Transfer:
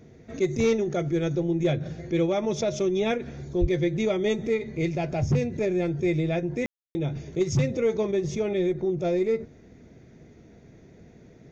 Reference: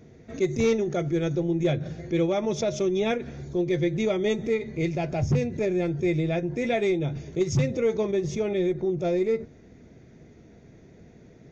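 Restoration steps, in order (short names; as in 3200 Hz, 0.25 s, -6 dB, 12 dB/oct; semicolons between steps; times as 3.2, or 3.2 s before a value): de-plosive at 3.6; room tone fill 6.66–6.95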